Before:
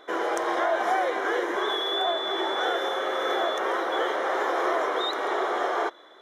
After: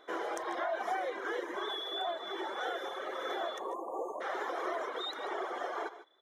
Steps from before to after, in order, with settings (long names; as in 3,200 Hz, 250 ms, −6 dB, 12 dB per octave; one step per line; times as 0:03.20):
time-frequency box erased 0:03.59–0:04.21, 1,200–6,300 Hz
reverb reduction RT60 1.5 s
on a send: multi-tap delay 137/151 ms −19/−15.5 dB
on the sum: level −8 dB